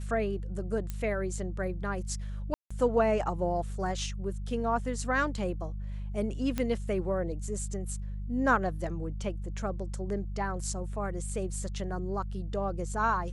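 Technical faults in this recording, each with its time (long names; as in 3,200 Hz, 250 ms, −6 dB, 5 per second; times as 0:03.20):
mains hum 50 Hz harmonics 4 −36 dBFS
0:00.90: click −21 dBFS
0:02.54–0:02.71: drop-out 165 ms
0:06.58: click −17 dBFS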